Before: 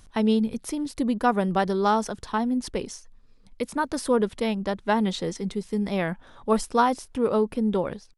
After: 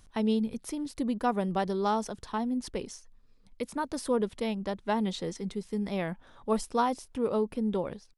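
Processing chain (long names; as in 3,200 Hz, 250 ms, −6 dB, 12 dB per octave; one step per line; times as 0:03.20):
dynamic equaliser 1,500 Hz, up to −4 dB, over −41 dBFS, Q 2.1
level −5.5 dB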